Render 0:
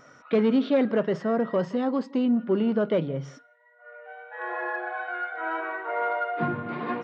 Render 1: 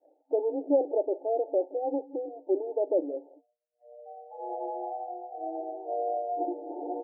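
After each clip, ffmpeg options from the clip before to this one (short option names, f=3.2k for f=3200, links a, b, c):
-af "afftfilt=real='re*between(b*sr/4096,270,900)':imag='im*between(b*sr/4096,270,900)':win_size=4096:overlap=0.75,agate=range=-33dB:threshold=-53dB:ratio=3:detection=peak,equalizer=f=420:t=o:w=0.21:g=-5"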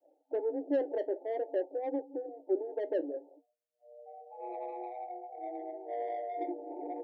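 -filter_complex "[0:a]acrossover=split=350|400|420[a][b][c][d];[d]asoftclip=type=tanh:threshold=-32.5dB[e];[a][b][c][e]amix=inputs=4:normalize=0,flanger=delay=3.3:depth=7:regen=-61:speed=0.52:shape=sinusoidal"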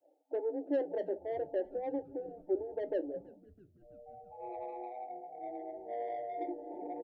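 -filter_complex "[0:a]asplit=6[a][b][c][d][e][f];[b]adelay=328,afreqshift=-99,volume=-23dB[g];[c]adelay=656,afreqshift=-198,volume=-27dB[h];[d]adelay=984,afreqshift=-297,volume=-31dB[i];[e]adelay=1312,afreqshift=-396,volume=-35dB[j];[f]adelay=1640,afreqshift=-495,volume=-39.1dB[k];[a][g][h][i][j][k]amix=inputs=6:normalize=0,volume=-2dB"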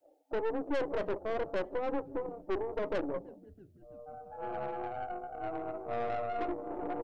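-af "aeval=exprs='(tanh(79.4*val(0)+0.7)-tanh(0.7))/79.4':c=same,volume=8.5dB"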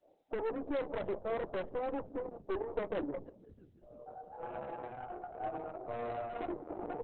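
-af "volume=-1.5dB" -ar 48000 -c:a libopus -b:a 6k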